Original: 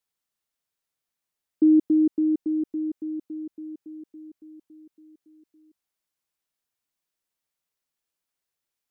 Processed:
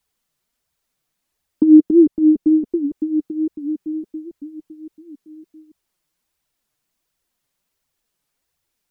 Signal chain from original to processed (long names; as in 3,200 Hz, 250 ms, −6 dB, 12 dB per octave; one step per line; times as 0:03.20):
low-shelf EQ 270 Hz +8 dB
in parallel at +2 dB: downward compressor, threshold −27 dBFS, peak gain reduction 14.5 dB
on the sum: flanger 1.4 Hz, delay 0.8 ms, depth 6.2 ms, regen +15%
wow of a warped record 78 rpm, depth 160 cents
level +5.5 dB